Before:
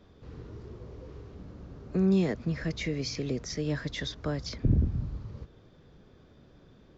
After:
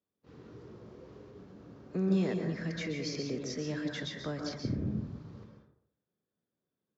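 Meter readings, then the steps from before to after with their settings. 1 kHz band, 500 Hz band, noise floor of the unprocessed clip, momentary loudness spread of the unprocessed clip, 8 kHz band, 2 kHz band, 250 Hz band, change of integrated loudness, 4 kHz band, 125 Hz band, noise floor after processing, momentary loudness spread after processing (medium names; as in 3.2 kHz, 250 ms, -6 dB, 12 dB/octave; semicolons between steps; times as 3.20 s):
-2.5 dB, -3.0 dB, -58 dBFS, 20 LU, no reading, -2.5 dB, -3.5 dB, -4.0 dB, -3.5 dB, -6.5 dB, under -85 dBFS, 22 LU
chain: gate -46 dBFS, range -28 dB; high-pass 150 Hz 12 dB/octave; plate-style reverb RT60 0.66 s, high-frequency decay 0.45×, pre-delay 115 ms, DRR 2.5 dB; trim -4.5 dB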